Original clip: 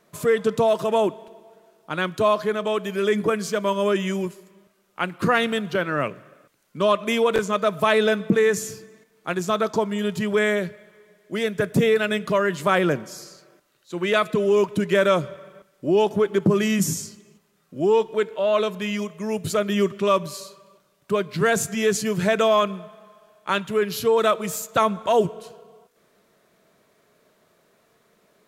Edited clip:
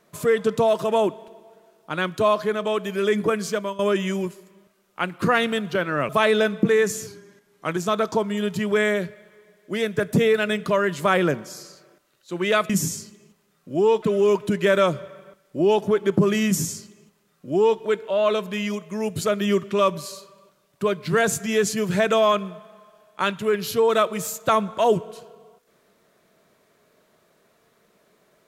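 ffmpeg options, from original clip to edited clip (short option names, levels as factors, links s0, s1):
-filter_complex "[0:a]asplit=7[s0][s1][s2][s3][s4][s5][s6];[s0]atrim=end=3.79,asetpts=PTS-STARTPTS,afade=t=out:st=3.53:d=0.26:silence=0.149624[s7];[s1]atrim=start=3.79:end=6.092,asetpts=PTS-STARTPTS,afade=t=in:d=0.004:c=hsin:silence=0.149624[s8];[s2]atrim=start=7.758:end=8.744[s9];[s3]atrim=start=8.74:end=9.38,asetpts=PTS-STARTPTS,asetrate=40572,aresample=44100,atrim=end_sample=30678,asetpts=PTS-STARTPTS[s10];[s4]atrim=start=9.376:end=14.312[s11];[s5]atrim=start=16.748:end=18.082[s12];[s6]atrim=start=14.308[s13];[s7][s8]concat=n=2:v=0:a=1[s14];[s14][s9]acrossfade=d=0.004:c1=hsin:c2=hsin[s15];[s15][s10]acrossfade=d=0.004:c1=hsin:c2=hsin[s16];[s16][s11]acrossfade=d=0.004:c1=hsin:c2=hsin[s17];[s17][s12]acrossfade=d=0.004:c1=hsin:c2=hsin[s18];[s18][s13]acrossfade=d=0.004:c1=hsin:c2=hsin"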